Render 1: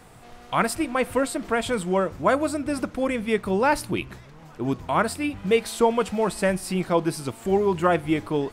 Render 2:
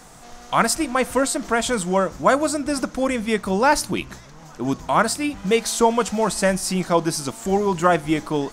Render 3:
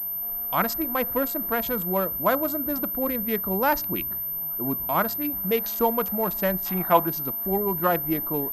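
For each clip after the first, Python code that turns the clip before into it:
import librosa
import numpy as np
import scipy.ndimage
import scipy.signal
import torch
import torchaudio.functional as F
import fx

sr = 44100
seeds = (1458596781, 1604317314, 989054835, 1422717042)

y1 = fx.graphic_eq_15(x, sr, hz=(100, 400, 2500, 6300), db=(-12, -5, -4, 10))
y1 = F.gain(torch.from_numpy(y1), 5.0).numpy()
y2 = fx.wiener(y1, sr, points=15)
y2 = fx.spec_box(y2, sr, start_s=6.66, length_s=0.41, low_hz=640.0, high_hz=3800.0, gain_db=9)
y2 = fx.pwm(y2, sr, carrier_hz=13000.0)
y2 = F.gain(torch.from_numpy(y2), -5.5).numpy()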